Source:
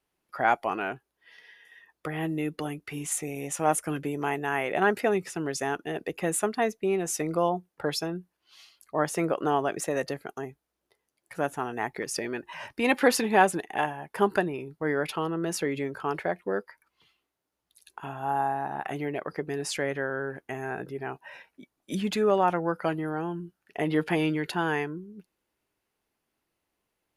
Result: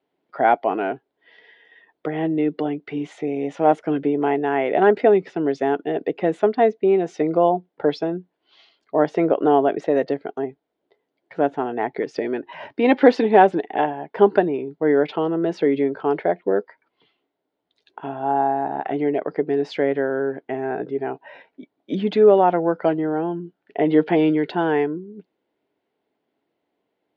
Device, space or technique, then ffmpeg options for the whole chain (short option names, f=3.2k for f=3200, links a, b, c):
kitchen radio: -af "highpass=160,equalizer=f=280:t=q:w=4:g=6,equalizer=f=430:t=q:w=4:g=6,equalizer=f=670:t=q:w=4:g=5,equalizer=f=1.2k:t=q:w=4:g=-7,equalizer=f=1.7k:t=q:w=4:g=-4,equalizer=f=2.6k:t=q:w=4:g=-7,lowpass=f=3.5k:w=0.5412,lowpass=f=3.5k:w=1.3066,volume=5.5dB"